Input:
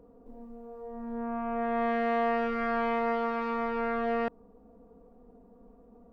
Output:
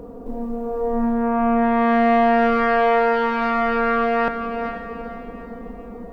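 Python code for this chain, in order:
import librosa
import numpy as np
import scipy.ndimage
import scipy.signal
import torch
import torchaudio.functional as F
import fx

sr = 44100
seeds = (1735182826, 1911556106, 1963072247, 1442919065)

p1 = fx.over_compress(x, sr, threshold_db=-38.0, ratio=-1.0)
p2 = x + F.gain(torch.from_numpy(p1), 0.5).numpy()
p3 = fx.echo_diffused(p2, sr, ms=462, feedback_pct=40, wet_db=-7)
y = F.gain(torch.from_numpy(p3), 8.5).numpy()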